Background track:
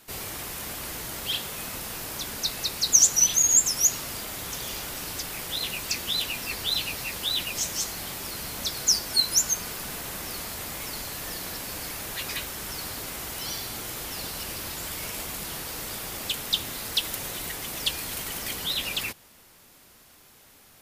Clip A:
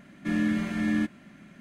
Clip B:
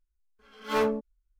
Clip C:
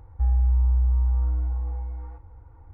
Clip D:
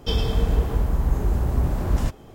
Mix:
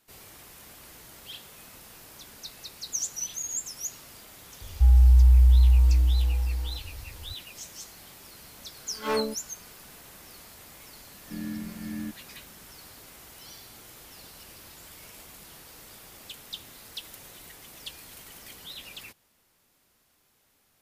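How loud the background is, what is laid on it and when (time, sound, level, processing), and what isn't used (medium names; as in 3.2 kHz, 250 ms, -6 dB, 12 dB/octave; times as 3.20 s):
background track -13.5 dB
4.61 s: add C -4 dB + bass shelf 460 Hz +8.5 dB
8.34 s: add B -2 dB
11.05 s: add A -15 dB + bass shelf 230 Hz +11.5 dB
not used: D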